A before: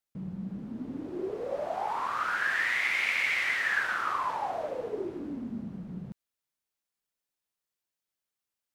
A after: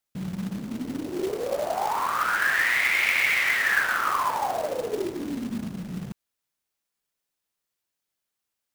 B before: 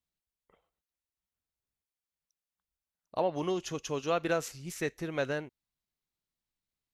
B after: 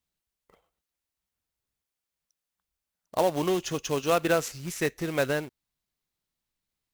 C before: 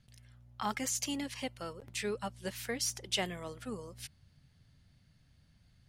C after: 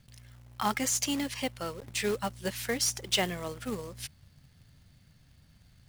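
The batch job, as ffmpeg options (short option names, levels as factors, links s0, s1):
-af "acrusher=bits=3:mode=log:mix=0:aa=0.000001,volume=1.88"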